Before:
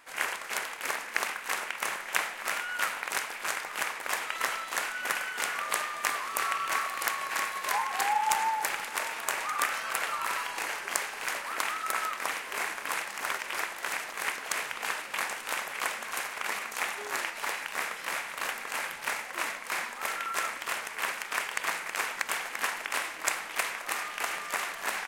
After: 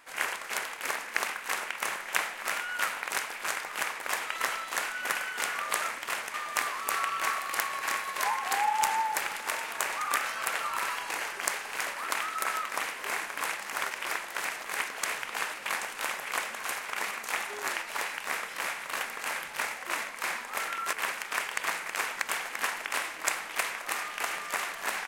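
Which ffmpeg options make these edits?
-filter_complex "[0:a]asplit=4[a][b][c][d];[a]atrim=end=5.822[e];[b]atrim=start=20.408:end=20.932[f];[c]atrim=start=5.818:end=20.412[g];[d]atrim=start=20.928[h];[e][f]acrossfade=d=0.004:c1=hsin:c2=hsin[i];[i][g]acrossfade=d=0.004:c1=hsin:c2=hsin[j];[j][h]acrossfade=d=0.004:c1=hsin:c2=hsin"

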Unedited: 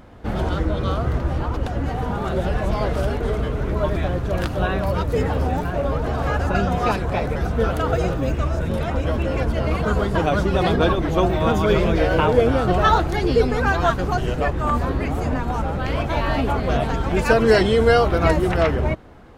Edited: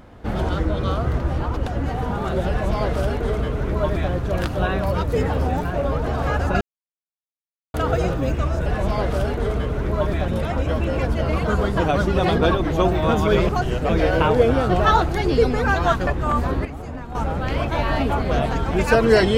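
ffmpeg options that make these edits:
-filter_complex "[0:a]asplit=10[a][b][c][d][e][f][g][h][i][j];[a]atrim=end=6.61,asetpts=PTS-STARTPTS,afade=t=out:st=6.606:d=0.004:c=hsin[k];[b]atrim=start=6.61:end=7.74,asetpts=PTS-STARTPTS,volume=0[l];[c]atrim=start=7.74:end=8.662,asetpts=PTS-STARTPTS,afade=t=in:d=0.004:c=hsin[m];[d]atrim=start=2.488:end=4.112[n];[e]atrim=start=8.658:end=11.872[o];[f]atrim=start=14.048:end=14.452[p];[g]atrim=start=11.868:end=14.052[q];[h]atrim=start=14.448:end=15.032[r];[i]atrim=start=15.028:end=15.532,asetpts=PTS-STARTPTS,volume=-9.5dB[s];[j]atrim=start=15.528[t];[k][l][m]concat=n=3:v=0:a=1[u];[u][n]acrossfade=d=0.004:c1=hsin:c2=hsin[v];[v][o]acrossfade=d=0.004:c1=hsin:c2=hsin[w];[w][p]acrossfade=d=0.004:c1=hsin:c2=hsin[x];[x][q]acrossfade=d=0.004:c1=hsin:c2=hsin[y];[y][r]acrossfade=d=0.004:c1=hsin:c2=hsin[z];[z][s]acrossfade=d=0.004:c1=hsin:c2=hsin[aa];[aa][t]acrossfade=d=0.004:c1=hsin:c2=hsin"

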